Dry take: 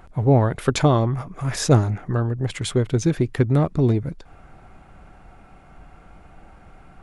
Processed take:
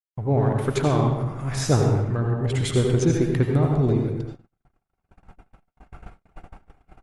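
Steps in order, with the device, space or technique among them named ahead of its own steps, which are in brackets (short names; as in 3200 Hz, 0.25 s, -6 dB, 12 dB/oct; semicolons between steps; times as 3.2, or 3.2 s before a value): speakerphone in a meeting room (reverb RT60 0.85 s, pre-delay 73 ms, DRR 2 dB; speakerphone echo 90 ms, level -10 dB; AGC gain up to 12.5 dB; gate -26 dBFS, range -56 dB; gain -7.5 dB; Opus 32 kbps 48000 Hz)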